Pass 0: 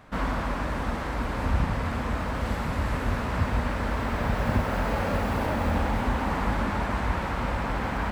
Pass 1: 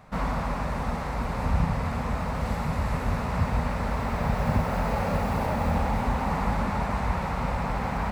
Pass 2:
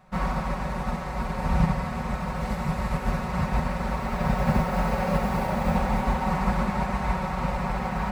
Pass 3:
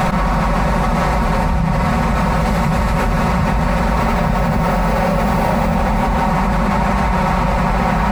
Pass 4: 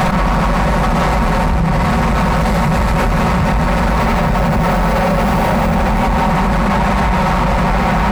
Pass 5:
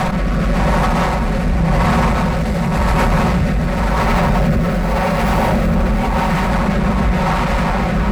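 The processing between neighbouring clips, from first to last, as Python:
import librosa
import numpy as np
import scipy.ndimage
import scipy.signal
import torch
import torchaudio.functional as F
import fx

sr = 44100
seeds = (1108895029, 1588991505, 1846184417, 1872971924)

y1 = fx.graphic_eq_31(x, sr, hz=(160, 315, 800, 1600, 3150), db=(7, -10, 3, -5, -6))
y2 = y1 + 0.62 * np.pad(y1, (int(5.4 * sr / 1000.0), 0))[:len(y1)]
y2 = fx.upward_expand(y2, sr, threshold_db=-36.0, expansion=1.5)
y2 = y2 * librosa.db_to_amplitude(2.5)
y3 = fx.env_flatten(y2, sr, amount_pct=100)
y3 = y3 * librosa.db_to_amplitude(2.0)
y4 = 10.0 ** (-14.5 / 20.0) * np.tanh(y3 / 10.0 ** (-14.5 / 20.0))
y4 = y4 * librosa.db_to_amplitude(5.5)
y5 = fx.rotary(y4, sr, hz=0.9)
y5 = y5 + 10.0 ** (-10.0 / 20.0) * np.pad(y5, (int(976 * sr / 1000.0), 0))[:len(y5)]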